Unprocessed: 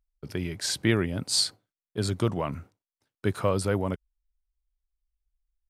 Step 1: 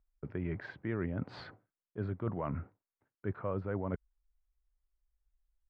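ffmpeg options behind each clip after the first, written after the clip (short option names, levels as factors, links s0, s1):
-af "lowpass=f=1900:w=0.5412,lowpass=f=1900:w=1.3066,areverse,acompressor=threshold=0.02:ratio=5,areverse,volume=1.12"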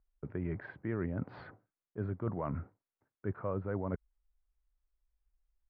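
-af "lowpass=2000"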